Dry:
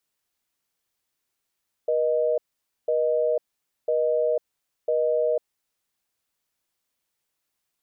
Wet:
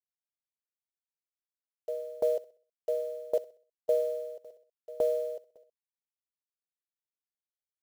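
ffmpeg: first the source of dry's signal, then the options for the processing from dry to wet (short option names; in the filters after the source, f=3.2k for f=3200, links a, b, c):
-f lavfi -i "aevalsrc='0.075*(sin(2*PI*480*t)+sin(2*PI*620*t))*clip(min(mod(t,1),0.5-mod(t,1))/0.005,0,1)':d=3.9:s=44100"
-af "acrusher=bits=6:mix=0:aa=0.5,aecho=1:1:64|128|192|256|320:0.168|0.0839|0.042|0.021|0.0105,aeval=exprs='val(0)*pow(10,-23*if(lt(mod(1.8*n/s,1),2*abs(1.8)/1000),1-mod(1.8*n/s,1)/(2*abs(1.8)/1000),(mod(1.8*n/s,1)-2*abs(1.8)/1000)/(1-2*abs(1.8)/1000))/20)':c=same"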